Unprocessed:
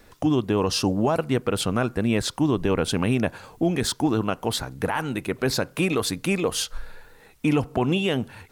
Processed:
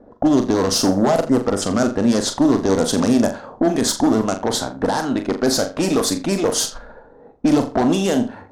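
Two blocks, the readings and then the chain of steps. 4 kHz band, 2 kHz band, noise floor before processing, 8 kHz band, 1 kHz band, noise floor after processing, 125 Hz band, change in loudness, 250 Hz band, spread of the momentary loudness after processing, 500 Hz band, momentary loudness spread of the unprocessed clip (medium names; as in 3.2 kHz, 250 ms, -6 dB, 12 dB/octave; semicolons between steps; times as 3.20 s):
+4.0 dB, +0.5 dB, -54 dBFS, +8.5 dB, +6.0 dB, -46 dBFS, -0.5 dB, +6.0 dB, +7.0 dB, 5 LU, +6.0 dB, 5 LU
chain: spectral replace 1.31–1.60 s, 2.1–4.8 kHz before; bass shelf 270 Hz -11 dB; Chebyshev shaper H 2 -9 dB, 5 -19 dB, 6 -13 dB, 8 -10 dB, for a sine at -10.5 dBFS; on a send: flutter echo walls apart 7.1 m, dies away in 0.31 s; on the sum: level-controlled noise filter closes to 600 Hz, open at -18.5 dBFS; in parallel at -2.5 dB: compression, threshold -35 dBFS, peak gain reduction 16 dB; on the sum: fifteen-band graphic EQ 250 Hz +11 dB, 630 Hz +7 dB, 2.5 kHz -11 dB, 6.3 kHz +6 dB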